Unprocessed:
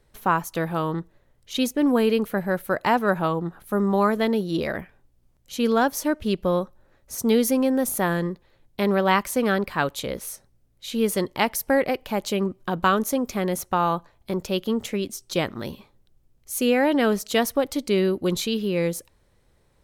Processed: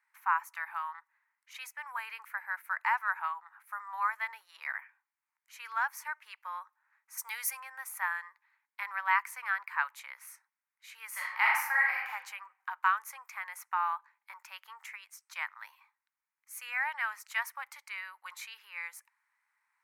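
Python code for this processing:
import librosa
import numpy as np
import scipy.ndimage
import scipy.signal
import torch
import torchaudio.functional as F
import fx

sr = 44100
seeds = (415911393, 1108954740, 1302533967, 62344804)

y = fx.high_shelf(x, sr, hz=4200.0, db=11.0, at=(7.17, 7.6))
y = fx.reverb_throw(y, sr, start_s=11.09, length_s=1.01, rt60_s=0.88, drr_db=-5.0)
y = scipy.signal.sosfilt(scipy.signal.cheby1(5, 1.0, 900.0, 'highpass', fs=sr, output='sos'), y)
y = fx.high_shelf_res(y, sr, hz=2700.0, db=-7.5, q=3.0)
y = F.gain(torch.from_numpy(y), -7.0).numpy()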